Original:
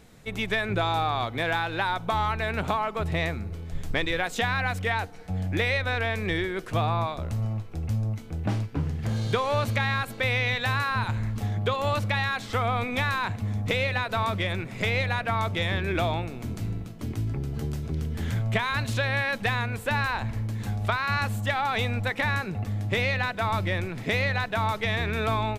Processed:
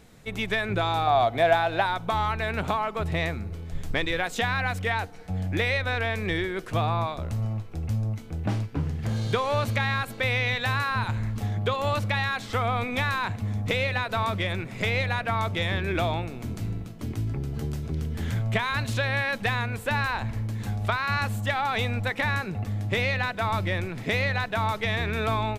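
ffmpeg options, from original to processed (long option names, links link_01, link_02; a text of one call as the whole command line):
ffmpeg -i in.wav -filter_complex "[0:a]asettb=1/sr,asplit=3[link_01][link_02][link_03];[link_01]atrim=end=1.074[link_04];[link_02]atrim=start=1.07:end=1.86,asetpts=PTS-STARTPTS,afade=type=in:duration=0.004:curve=qsin,afade=type=out:start_time=0.786:duration=0.004:curve=qsin,equalizer=frequency=680:width=4.1:gain=14[link_05];[link_03]atrim=start=1.856[link_06];[link_04][link_05]acrossfade=duration=0.004:curve1=hsin:curve2=qsin[link_07];[link_07][link_06]acrossfade=duration=0.004:curve1=qsin:curve2=hsin" out.wav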